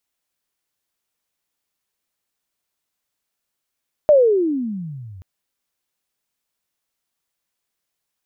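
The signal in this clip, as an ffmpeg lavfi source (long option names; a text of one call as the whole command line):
ffmpeg -f lavfi -i "aevalsrc='pow(10,(-7-29*t/1.13)/20)*sin(2*PI*620*1.13/(-34*log(2)/12)*(exp(-34*log(2)/12*t/1.13)-1))':duration=1.13:sample_rate=44100" out.wav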